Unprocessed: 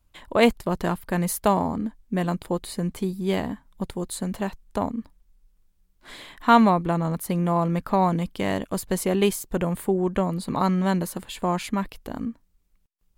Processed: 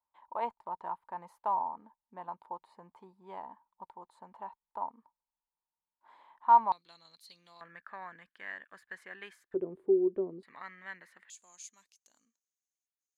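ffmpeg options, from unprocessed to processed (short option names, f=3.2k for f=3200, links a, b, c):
-af "asetnsamples=n=441:p=0,asendcmd='6.72 bandpass f 4200;7.61 bandpass f 1700;9.54 bandpass f 380;10.43 bandpass f 1900;11.3 bandpass f 6500',bandpass=f=920:t=q:w=10:csg=0"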